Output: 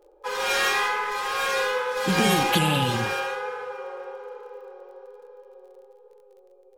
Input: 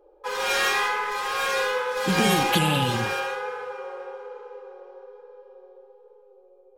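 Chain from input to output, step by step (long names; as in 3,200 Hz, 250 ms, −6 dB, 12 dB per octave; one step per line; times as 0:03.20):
surface crackle 36 per second −50 dBFS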